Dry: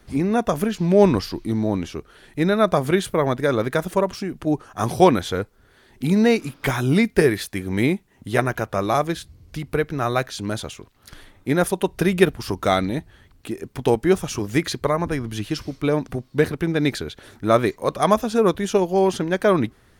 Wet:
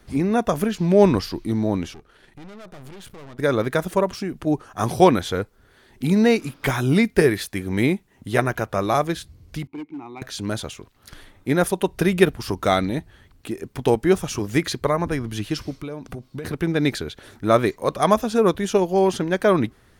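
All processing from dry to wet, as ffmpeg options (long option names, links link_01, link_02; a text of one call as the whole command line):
ffmpeg -i in.wav -filter_complex "[0:a]asettb=1/sr,asplit=3[link_01][link_02][link_03];[link_01]atrim=end=1.944[link_04];[link_02]atrim=start=1.94:end=3.39,asetpts=PTS-STARTPTS,afade=type=in:duration=0.004:curve=qsin,afade=type=out:start_time=1.446:duration=0.004:curve=qsin,highshelf=frequency=5800:gain=-5.5,acompressor=threshold=-30dB:ratio=2.5:attack=3.2:release=140:knee=1:detection=peak,aeval=exprs='(tanh(89.1*val(0)+0.8)-tanh(0.8))/89.1':channel_layout=same[link_05];[link_03]atrim=start=3.386[link_06];[link_04][link_05]acrossfade=duration=0.004:curve1=hsin:curve2=qsin[link_07];[link_07][link_06]acrossfade=duration=0.004:curve1=qsin:curve2=hsin,asettb=1/sr,asplit=3[link_08][link_09][link_10];[link_08]atrim=end=9.674[link_11];[link_09]atrim=start=9.67:end=10.22,asetpts=PTS-STARTPTS,afade=type=in:duration=0.004:curve=qsin,afade=type=out:start_time=0.546:duration=0.004:curve=qsin,asplit=3[link_12][link_13][link_14];[link_12]bandpass=frequency=300:width_type=q:width=8,volume=0dB[link_15];[link_13]bandpass=frequency=870:width_type=q:width=8,volume=-6dB[link_16];[link_14]bandpass=frequency=2240:width_type=q:width=8,volume=-9dB[link_17];[link_15][link_16][link_17]amix=inputs=3:normalize=0,asoftclip=type=hard:threshold=-28.5dB[link_18];[link_10]atrim=start=10.216[link_19];[link_11][link_18]acrossfade=duration=0.004:curve1=hsin:curve2=qsin[link_20];[link_20][link_19]acrossfade=duration=0.004:curve1=qsin:curve2=hsin,asettb=1/sr,asplit=3[link_21][link_22][link_23];[link_21]atrim=end=15.764[link_24];[link_22]atrim=start=15.76:end=16.45,asetpts=PTS-STARTPTS,afade=type=in:duration=0.004:curve=qsin,afade=type=out:start_time=0.686:duration=0.004:curve=qsin,bandreject=frequency=1800:width=10,acompressor=threshold=-28dB:ratio=10:attack=3.2:release=140:knee=1:detection=peak[link_25];[link_23]atrim=start=16.446[link_26];[link_24][link_25]acrossfade=duration=0.004:curve1=hsin:curve2=qsin[link_27];[link_27][link_26]acrossfade=duration=0.004:curve1=qsin:curve2=hsin" out.wav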